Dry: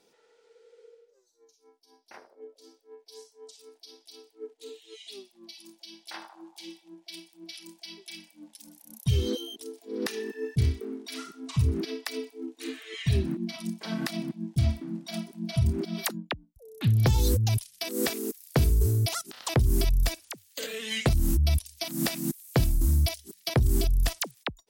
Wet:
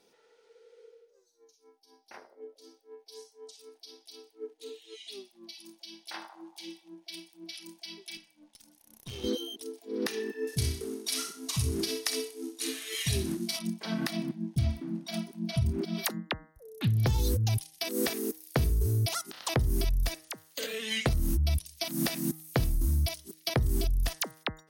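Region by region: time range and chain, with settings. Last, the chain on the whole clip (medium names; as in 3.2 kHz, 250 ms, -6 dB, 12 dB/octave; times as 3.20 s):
8.17–9.24 s: high-pass 510 Hz 6 dB/octave + peaking EQ 14 kHz -6 dB 0.85 oct + valve stage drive 37 dB, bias 0.75
10.47–13.59 s: CVSD coder 64 kbps + tone controls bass -5 dB, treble +14 dB + flutter echo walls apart 10.9 m, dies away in 0.31 s
whole clip: band-stop 7.5 kHz, Q 8.4; de-hum 157.9 Hz, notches 13; compression 2.5:1, threshold -25 dBFS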